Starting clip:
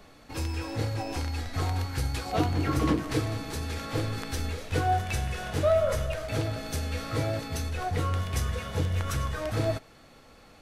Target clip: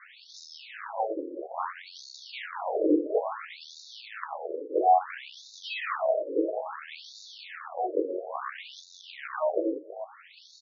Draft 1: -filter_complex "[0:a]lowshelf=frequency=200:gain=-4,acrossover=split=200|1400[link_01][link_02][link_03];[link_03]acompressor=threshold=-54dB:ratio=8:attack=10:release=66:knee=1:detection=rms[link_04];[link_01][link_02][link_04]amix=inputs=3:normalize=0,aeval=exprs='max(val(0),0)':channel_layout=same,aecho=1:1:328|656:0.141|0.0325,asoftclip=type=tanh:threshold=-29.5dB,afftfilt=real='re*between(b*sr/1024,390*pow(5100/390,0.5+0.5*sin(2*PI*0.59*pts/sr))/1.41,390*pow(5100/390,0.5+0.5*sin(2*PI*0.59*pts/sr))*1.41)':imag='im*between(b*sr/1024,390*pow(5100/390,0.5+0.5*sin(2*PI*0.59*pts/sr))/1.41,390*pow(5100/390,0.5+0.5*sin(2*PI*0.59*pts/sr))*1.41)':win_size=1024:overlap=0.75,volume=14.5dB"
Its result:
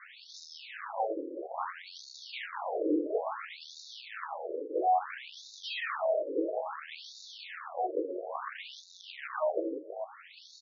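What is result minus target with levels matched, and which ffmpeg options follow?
soft clipping: distortion +12 dB
-filter_complex "[0:a]lowshelf=frequency=200:gain=-4,acrossover=split=200|1400[link_01][link_02][link_03];[link_03]acompressor=threshold=-54dB:ratio=8:attack=10:release=66:knee=1:detection=rms[link_04];[link_01][link_02][link_04]amix=inputs=3:normalize=0,aeval=exprs='max(val(0),0)':channel_layout=same,aecho=1:1:328|656:0.141|0.0325,asoftclip=type=tanh:threshold=-18.5dB,afftfilt=real='re*between(b*sr/1024,390*pow(5100/390,0.5+0.5*sin(2*PI*0.59*pts/sr))/1.41,390*pow(5100/390,0.5+0.5*sin(2*PI*0.59*pts/sr))*1.41)':imag='im*between(b*sr/1024,390*pow(5100/390,0.5+0.5*sin(2*PI*0.59*pts/sr))/1.41,390*pow(5100/390,0.5+0.5*sin(2*PI*0.59*pts/sr))*1.41)':win_size=1024:overlap=0.75,volume=14.5dB"

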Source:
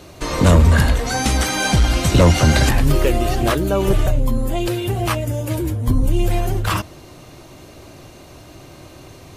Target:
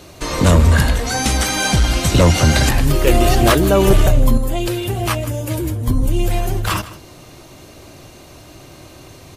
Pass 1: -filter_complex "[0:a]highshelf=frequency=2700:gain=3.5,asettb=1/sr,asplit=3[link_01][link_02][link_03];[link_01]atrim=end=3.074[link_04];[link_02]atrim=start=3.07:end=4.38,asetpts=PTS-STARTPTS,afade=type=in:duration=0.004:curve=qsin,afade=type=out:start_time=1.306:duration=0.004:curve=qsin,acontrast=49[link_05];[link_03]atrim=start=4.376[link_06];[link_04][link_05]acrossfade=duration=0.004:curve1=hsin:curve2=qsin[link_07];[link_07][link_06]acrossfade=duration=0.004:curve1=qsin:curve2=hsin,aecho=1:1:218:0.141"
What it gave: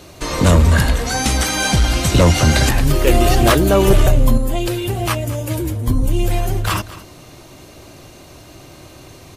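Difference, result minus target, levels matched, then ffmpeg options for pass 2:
echo 60 ms late
-filter_complex "[0:a]highshelf=frequency=2700:gain=3.5,asettb=1/sr,asplit=3[link_01][link_02][link_03];[link_01]atrim=end=3.074[link_04];[link_02]atrim=start=3.07:end=4.38,asetpts=PTS-STARTPTS,afade=type=in:duration=0.004:curve=qsin,afade=type=out:start_time=1.306:duration=0.004:curve=qsin,acontrast=49[link_05];[link_03]atrim=start=4.376[link_06];[link_04][link_05]acrossfade=duration=0.004:curve1=hsin:curve2=qsin[link_07];[link_07][link_06]acrossfade=duration=0.004:curve1=qsin:curve2=hsin,aecho=1:1:158:0.141"

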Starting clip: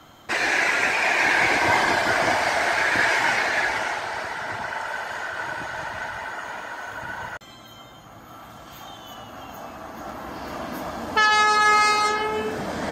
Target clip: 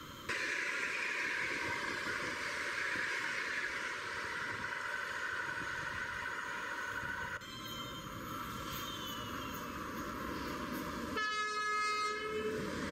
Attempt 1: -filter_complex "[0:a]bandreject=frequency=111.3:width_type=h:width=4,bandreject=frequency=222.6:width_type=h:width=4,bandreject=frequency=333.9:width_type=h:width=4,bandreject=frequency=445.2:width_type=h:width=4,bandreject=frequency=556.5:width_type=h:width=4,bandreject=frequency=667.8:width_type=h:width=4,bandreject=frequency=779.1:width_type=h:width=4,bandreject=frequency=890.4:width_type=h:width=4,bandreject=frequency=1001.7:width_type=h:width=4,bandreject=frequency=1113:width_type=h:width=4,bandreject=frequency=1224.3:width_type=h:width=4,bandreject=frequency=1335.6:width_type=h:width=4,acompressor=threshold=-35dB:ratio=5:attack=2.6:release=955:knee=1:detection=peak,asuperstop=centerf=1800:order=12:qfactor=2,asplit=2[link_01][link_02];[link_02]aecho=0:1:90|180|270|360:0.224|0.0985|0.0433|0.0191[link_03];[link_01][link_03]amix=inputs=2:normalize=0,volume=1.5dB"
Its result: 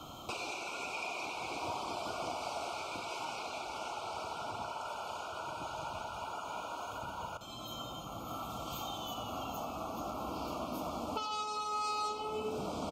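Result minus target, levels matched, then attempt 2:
2,000 Hz band −9.0 dB
-filter_complex "[0:a]bandreject=frequency=111.3:width_type=h:width=4,bandreject=frequency=222.6:width_type=h:width=4,bandreject=frequency=333.9:width_type=h:width=4,bandreject=frequency=445.2:width_type=h:width=4,bandreject=frequency=556.5:width_type=h:width=4,bandreject=frequency=667.8:width_type=h:width=4,bandreject=frequency=779.1:width_type=h:width=4,bandreject=frequency=890.4:width_type=h:width=4,bandreject=frequency=1001.7:width_type=h:width=4,bandreject=frequency=1113:width_type=h:width=4,bandreject=frequency=1224.3:width_type=h:width=4,bandreject=frequency=1335.6:width_type=h:width=4,acompressor=threshold=-35dB:ratio=5:attack=2.6:release=955:knee=1:detection=peak,asuperstop=centerf=750:order=12:qfactor=2,asplit=2[link_01][link_02];[link_02]aecho=0:1:90|180|270|360:0.224|0.0985|0.0433|0.0191[link_03];[link_01][link_03]amix=inputs=2:normalize=0,volume=1.5dB"

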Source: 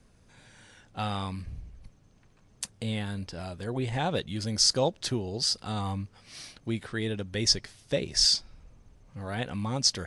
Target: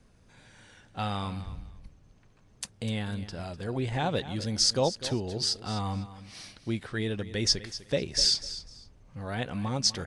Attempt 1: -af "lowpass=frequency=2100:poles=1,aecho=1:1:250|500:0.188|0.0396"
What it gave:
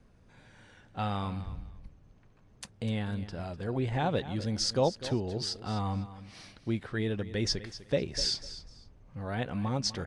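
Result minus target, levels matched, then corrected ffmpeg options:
8,000 Hz band −4.5 dB
-af "lowpass=frequency=7800:poles=1,aecho=1:1:250|500:0.188|0.0396"

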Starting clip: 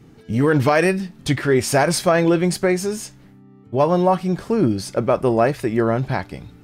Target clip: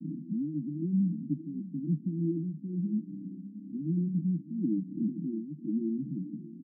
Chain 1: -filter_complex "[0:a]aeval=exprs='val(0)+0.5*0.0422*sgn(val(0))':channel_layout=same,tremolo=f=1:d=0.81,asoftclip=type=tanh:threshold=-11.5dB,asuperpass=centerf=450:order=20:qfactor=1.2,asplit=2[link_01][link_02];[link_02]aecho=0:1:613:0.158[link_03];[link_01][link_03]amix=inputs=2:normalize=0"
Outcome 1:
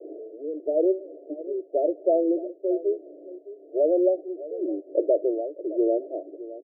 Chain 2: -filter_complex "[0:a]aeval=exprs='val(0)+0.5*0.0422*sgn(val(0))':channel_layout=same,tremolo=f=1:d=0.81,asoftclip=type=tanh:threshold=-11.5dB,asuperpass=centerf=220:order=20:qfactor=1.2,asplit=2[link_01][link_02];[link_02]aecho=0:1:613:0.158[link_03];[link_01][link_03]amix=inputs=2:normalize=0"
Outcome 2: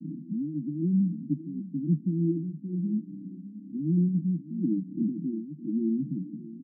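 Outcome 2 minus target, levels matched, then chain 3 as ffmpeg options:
soft clipping: distortion −10 dB
-filter_complex "[0:a]aeval=exprs='val(0)+0.5*0.0422*sgn(val(0))':channel_layout=same,tremolo=f=1:d=0.81,asoftclip=type=tanh:threshold=-21.5dB,asuperpass=centerf=220:order=20:qfactor=1.2,asplit=2[link_01][link_02];[link_02]aecho=0:1:613:0.158[link_03];[link_01][link_03]amix=inputs=2:normalize=0"

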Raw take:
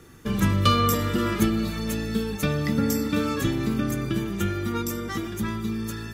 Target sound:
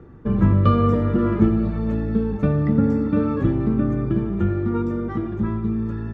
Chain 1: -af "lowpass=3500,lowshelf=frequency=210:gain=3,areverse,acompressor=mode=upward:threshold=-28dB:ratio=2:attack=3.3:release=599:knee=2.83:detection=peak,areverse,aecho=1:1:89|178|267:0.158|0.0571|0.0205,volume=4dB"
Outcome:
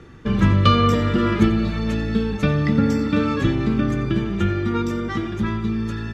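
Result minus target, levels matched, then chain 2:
4,000 Hz band +17.5 dB
-af "lowpass=990,lowshelf=frequency=210:gain=3,areverse,acompressor=mode=upward:threshold=-28dB:ratio=2:attack=3.3:release=599:knee=2.83:detection=peak,areverse,aecho=1:1:89|178|267:0.158|0.0571|0.0205,volume=4dB"

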